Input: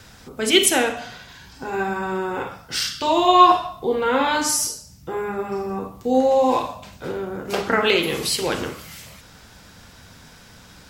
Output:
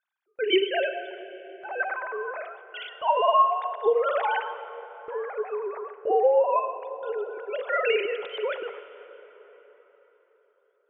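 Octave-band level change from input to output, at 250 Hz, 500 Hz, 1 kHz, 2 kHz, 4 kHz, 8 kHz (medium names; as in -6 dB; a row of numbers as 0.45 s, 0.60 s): -14.5 dB, -3.0 dB, -6.0 dB, -5.5 dB, -11.5 dB, under -40 dB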